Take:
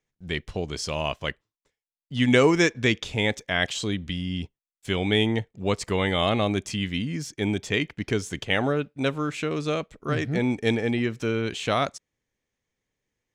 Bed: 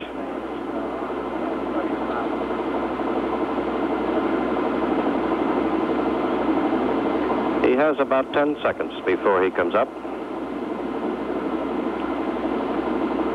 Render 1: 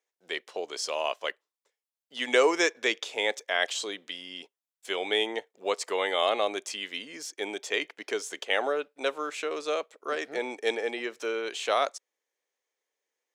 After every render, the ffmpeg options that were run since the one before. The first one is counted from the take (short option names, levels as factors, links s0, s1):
-af "highpass=f=430:w=0.5412,highpass=f=430:w=1.3066,equalizer=f=2300:t=o:w=1.5:g=-3"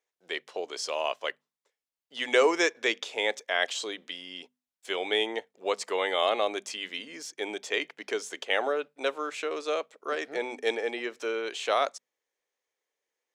-af "highshelf=f=8500:g=-5.5,bandreject=f=50:t=h:w=6,bandreject=f=100:t=h:w=6,bandreject=f=150:t=h:w=6,bandreject=f=200:t=h:w=6,bandreject=f=250:t=h:w=6"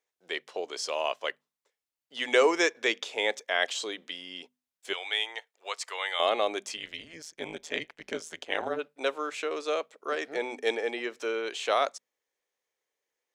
-filter_complex "[0:a]asettb=1/sr,asplit=3[s0][s1][s2];[s0]atrim=end=4.934[s3];[s1]atrim=start=4.93:end=6.2,asetpts=PTS-STARTPTS,afade=t=in:d=0.004:c=qsin,afade=t=out:st=1.266:d=0.004:c=qsin,highpass=1100[s4];[s2]atrim=start=6.196[s5];[s3][s4]acrossfade=d=0.004:c1=hsin:c2=qsin[s6];[s6][s5]acrossfade=d=0.004:c1=qsin:c2=hsin,asplit=3[s7][s8][s9];[s7]afade=t=out:st=6.76:d=0.02[s10];[s8]tremolo=f=160:d=0.947,afade=t=in:st=6.76:d=0.02,afade=t=out:st=8.78:d=0.02[s11];[s9]afade=t=in:st=8.78:d=0.02[s12];[s10][s11][s12]amix=inputs=3:normalize=0"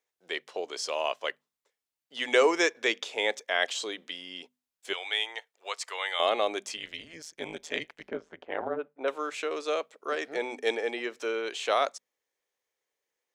-filter_complex "[0:a]asettb=1/sr,asplit=3[s0][s1][s2];[s0]atrim=end=8.084[s3];[s1]atrim=start=8.08:end=9.08,asetpts=PTS-STARTPTS,afade=t=in:d=0.004:c=qsin,afade=t=out:st=0.996:d=0.004:c=qsin,lowpass=1400[s4];[s2]atrim=start=9.076[s5];[s3][s4]acrossfade=d=0.004:c1=hsin:c2=qsin[s6];[s6][s5]acrossfade=d=0.004:c1=qsin:c2=hsin"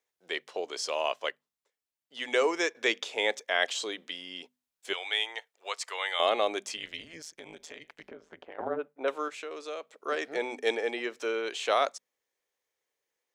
-filter_complex "[0:a]asplit=3[s0][s1][s2];[s0]afade=t=out:st=7.31:d=0.02[s3];[s1]acompressor=threshold=0.00891:ratio=10:attack=3.2:release=140:knee=1:detection=peak,afade=t=in:st=7.31:d=0.02,afade=t=out:st=8.58:d=0.02[s4];[s2]afade=t=in:st=8.58:d=0.02[s5];[s3][s4][s5]amix=inputs=3:normalize=0,asettb=1/sr,asplit=3[s6][s7][s8];[s6]atrim=end=9.284[s9];[s7]atrim=start=9.28:end=9.95,asetpts=PTS-STARTPTS,afade=t=in:d=0.004:c=qsin,afade=t=out:st=0.666:d=0.004:c=qsin,acompressor=threshold=0.00355:ratio=1.5:attack=3.2:release=140:knee=1:detection=peak[s10];[s8]atrim=start=9.946[s11];[s9][s10]acrossfade=d=0.004:c1=hsin:c2=qsin[s12];[s12][s11]acrossfade=d=0.004:c1=qsin:c2=hsin,asplit=3[s13][s14][s15];[s13]atrim=end=1.292[s16];[s14]atrim=start=1.288:end=2.752,asetpts=PTS-STARTPTS,volume=0.631[s17];[s15]atrim=start=2.748[s18];[s16][s17]acrossfade=d=0.004:c1=hsin:c2=hsin[s19];[s19][s18]acrossfade=d=0.004:c1=hsin:c2=hsin"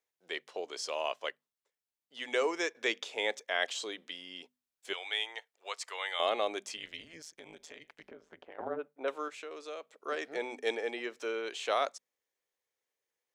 -af "volume=0.596"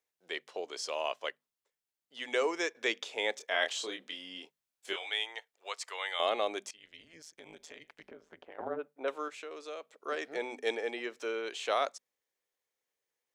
-filter_complex "[0:a]asettb=1/sr,asplit=3[s0][s1][s2];[s0]atrim=end=3.374[s3];[s1]atrim=start=3.37:end=5.1,asetpts=PTS-STARTPTS,afade=t=in:d=0.004:c=qsin,afade=t=out:st=1.726:d=0.004:c=qsin,asplit=2[s4][s5];[s5]adelay=26,volume=0.562[s6];[s4][s6]amix=inputs=2:normalize=0,atrim=end_sample=76293[s7];[s2]atrim=start=5.096[s8];[s3][s7]acrossfade=d=0.004:c1=hsin:c2=qsin[s9];[s9][s8]acrossfade=d=0.004:c1=qsin:c2=hsin,asplit=2[s10][s11];[s10]atrim=end=6.71,asetpts=PTS-STARTPTS,afade=t=out:st=6.706:d=0.004:c=hsin:silence=0.1[s12];[s11]atrim=start=6.71,asetpts=PTS-STARTPTS,afade=t=in:d=0.81:silence=0.1[s13];[s12][s13]concat=n=2:v=0:a=1"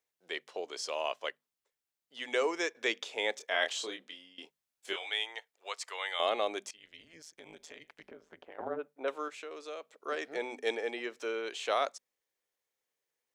-filter_complex "[0:a]asplit=2[s0][s1];[s0]atrim=end=4.38,asetpts=PTS-STARTPTS,afade=t=out:st=3.84:d=0.54:silence=0.11885[s2];[s1]atrim=start=4.38,asetpts=PTS-STARTPTS,afade=t=in:d=0.004:c=hsin:silence=0.11885[s3];[s2][s3]concat=n=2:v=0:a=1"